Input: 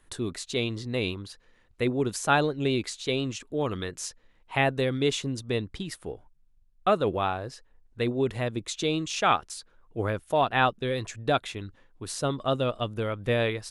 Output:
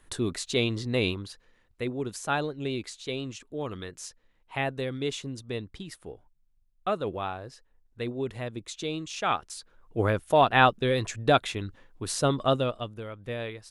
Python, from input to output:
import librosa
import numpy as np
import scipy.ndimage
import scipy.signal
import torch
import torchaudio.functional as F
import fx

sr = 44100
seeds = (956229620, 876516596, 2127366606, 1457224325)

y = fx.gain(x, sr, db=fx.line((1.09, 2.5), (1.86, -5.5), (9.18, -5.5), (10.0, 3.5), (12.46, 3.5), (13.02, -9.0)))